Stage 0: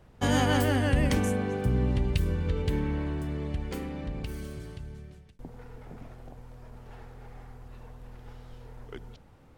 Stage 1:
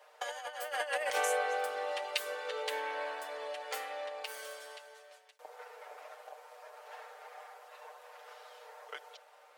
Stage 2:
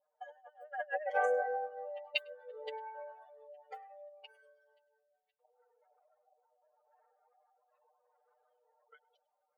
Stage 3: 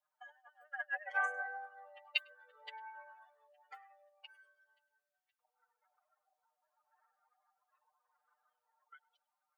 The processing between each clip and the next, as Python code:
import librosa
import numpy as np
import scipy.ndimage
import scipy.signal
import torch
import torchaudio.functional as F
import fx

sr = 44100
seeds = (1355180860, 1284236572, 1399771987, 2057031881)

y1 = scipy.signal.sosfilt(scipy.signal.ellip(4, 1.0, 60, 540.0, 'highpass', fs=sr, output='sos'), x)
y1 = y1 + 0.82 * np.pad(y1, (int(6.6 * sr / 1000.0), 0))[:len(y1)]
y1 = fx.over_compress(y1, sr, threshold_db=-33.0, ratio=-0.5)
y2 = fx.spec_expand(y1, sr, power=2.7)
y2 = y2 + 10.0 ** (-21.0 / 20.0) * np.pad(y2, (int(102 * sr / 1000.0), 0))[:len(y2)]
y2 = fx.upward_expand(y2, sr, threshold_db=-47.0, expansion=2.5)
y2 = y2 * 10.0 ** (3.5 / 20.0)
y3 = fx.ladder_highpass(y2, sr, hz=1000.0, resonance_pct=40)
y3 = y3 * 10.0 ** (7.0 / 20.0)